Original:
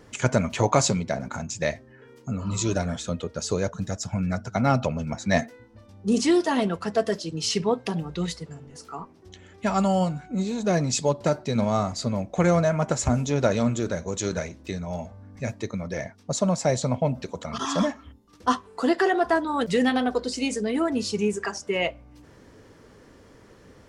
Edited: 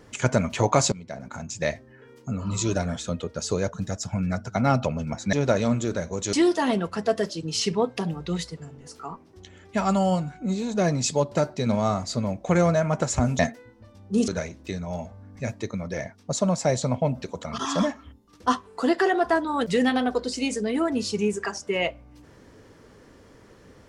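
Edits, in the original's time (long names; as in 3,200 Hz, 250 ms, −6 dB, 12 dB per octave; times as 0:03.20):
0:00.92–0:01.68: fade in, from −17.5 dB
0:05.33–0:06.22: swap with 0:13.28–0:14.28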